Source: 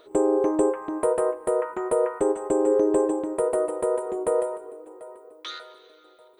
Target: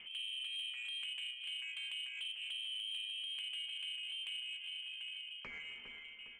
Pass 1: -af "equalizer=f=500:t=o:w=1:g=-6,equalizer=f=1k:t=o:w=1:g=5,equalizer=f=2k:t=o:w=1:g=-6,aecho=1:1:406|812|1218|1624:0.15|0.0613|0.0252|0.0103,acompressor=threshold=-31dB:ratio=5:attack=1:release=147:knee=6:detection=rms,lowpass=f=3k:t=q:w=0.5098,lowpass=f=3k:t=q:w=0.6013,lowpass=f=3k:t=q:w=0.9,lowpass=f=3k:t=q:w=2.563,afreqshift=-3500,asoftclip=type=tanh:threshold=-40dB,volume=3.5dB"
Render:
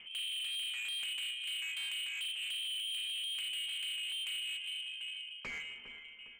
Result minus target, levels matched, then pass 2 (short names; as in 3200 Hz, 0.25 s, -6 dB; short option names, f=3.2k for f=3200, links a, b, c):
compressor: peak gain reduction -9 dB
-af "equalizer=f=500:t=o:w=1:g=-6,equalizer=f=1k:t=o:w=1:g=5,equalizer=f=2k:t=o:w=1:g=-6,aecho=1:1:406|812|1218|1624:0.15|0.0613|0.0252|0.0103,acompressor=threshold=-42.5dB:ratio=5:attack=1:release=147:knee=6:detection=rms,lowpass=f=3k:t=q:w=0.5098,lowpass=f=3k:t=q:w=0.6013,lowpass=f=3k:t=q:w=0.9,lowpass=f=3k:t=q:w=2.563,afreqshift=-3500,asoftclip=type=tanh:threshold=-40dB,volume=3.5dB"